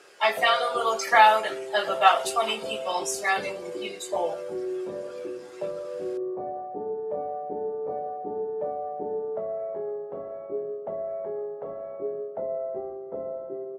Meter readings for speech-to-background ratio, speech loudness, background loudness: 10.0 dB, -23.5 LUFS, -33.5 LUFS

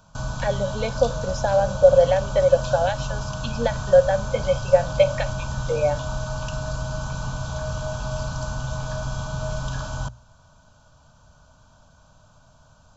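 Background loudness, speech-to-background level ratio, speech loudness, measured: -30.0 LUFS, 8.5 dB, -21.5 LUFS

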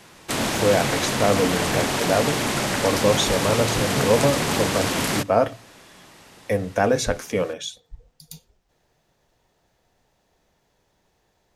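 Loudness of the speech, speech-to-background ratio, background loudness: -23.5 LUFS, -0.5 dB, -23.0 LUFS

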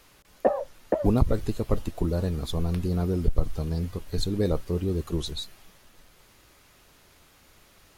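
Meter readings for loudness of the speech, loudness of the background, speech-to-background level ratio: -28.5 LUFS, -29.5 LUFS, 1.0 dB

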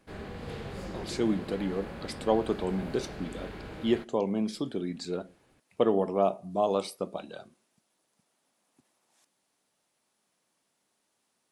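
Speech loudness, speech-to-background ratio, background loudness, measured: -31.0 LUFS, 10.5 dB, -41.5 LUFS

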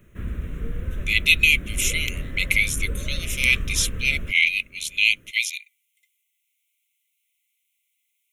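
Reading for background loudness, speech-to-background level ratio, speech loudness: -33.0 LUFS, 12.0 dB, -21.0 LUFS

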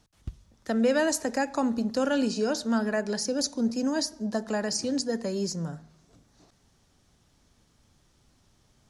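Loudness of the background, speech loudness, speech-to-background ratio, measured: -46.0 LUFS, -28.0 LUFS, 18.0 dB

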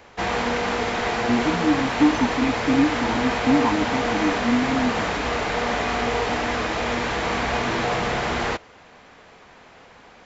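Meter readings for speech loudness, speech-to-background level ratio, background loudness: -23.5 LUFS, 0.5 dB, -24.0 LUFS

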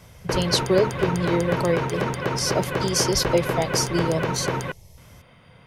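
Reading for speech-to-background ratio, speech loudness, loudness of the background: 2.0 dB, -24.5 LUFS, -26.5 LUFS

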